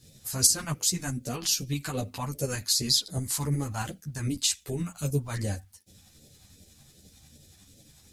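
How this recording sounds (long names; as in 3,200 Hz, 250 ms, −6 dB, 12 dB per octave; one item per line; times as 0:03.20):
a quantiser's noise floor 12 bits, dither none
phaser sweep stages 2, 2.6 Hz, lowest notch 460–1,000 Hz
tremolo saw up 11 Hz, depth 45%
a shimmering, thickened sound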